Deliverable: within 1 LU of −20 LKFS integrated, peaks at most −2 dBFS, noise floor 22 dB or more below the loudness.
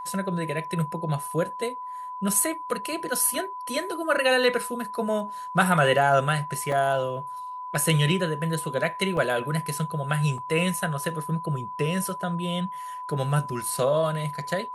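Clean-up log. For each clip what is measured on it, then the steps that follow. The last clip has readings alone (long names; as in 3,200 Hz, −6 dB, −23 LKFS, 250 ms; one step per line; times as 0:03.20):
number of dropouts 3; longest dropout 2.1 ms; interfering tone 1,000 Hz; level of the tone −33 dBFS; integrated loudness −26.0 LKFS; sample peak −6.5 dBFS; target loudness −20.0 LKFS
→ repair the gap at 0:06.72/0:09.17/0:10.38, 2.1 ms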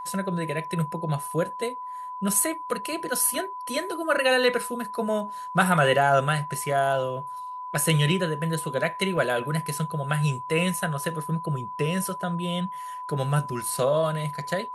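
number of dropouts 0; interfering tone 1,000 Hz; level of the tone −33 dBFS
→ notch filter 1,000 Hz, Q 30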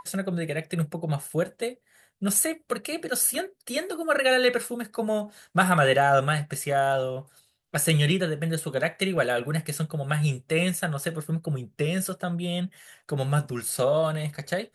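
interfering tone none found; integrated loudness −26.0 LKFS; sample peak −7.0 dBFS; target loudness −20.0 LKFS
→ level +6 dB
brickwall limiter −2 dBFS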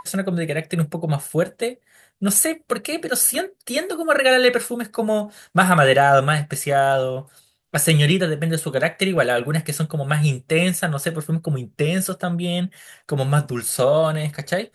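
integrated loudness −20.0 LKFS; sample peak −2.0 dBFS; background noise floor −63 dBFS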